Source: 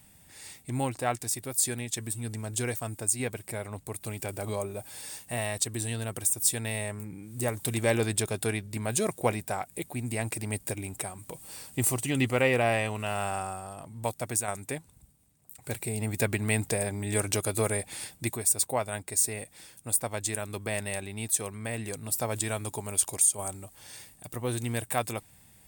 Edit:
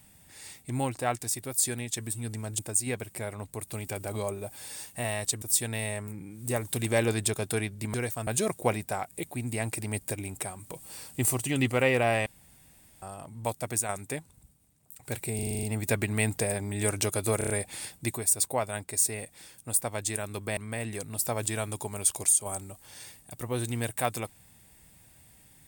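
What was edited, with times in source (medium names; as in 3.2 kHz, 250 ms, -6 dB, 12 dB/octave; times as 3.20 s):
2.59–2.92 s: move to 8.86 s
5.75–6.34 s: delete
12.85–13.61 s: room tone
15.94 s: stutter 0.04 s, 8 plays
17.69 s: stutter 0.03 s, 5 plays
20.76–21.50 s: delete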